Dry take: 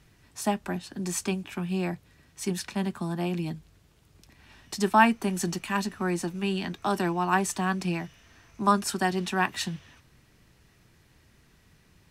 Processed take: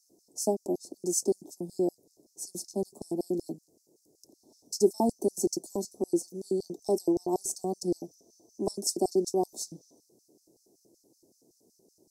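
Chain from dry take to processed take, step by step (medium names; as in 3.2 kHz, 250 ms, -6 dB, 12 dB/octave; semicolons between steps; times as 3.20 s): LFO high-pass square 5.3 Hz 340–4900 Hz; inverse Chebyshev band-stop 1.4–2.9 kHz, stop band 60 dB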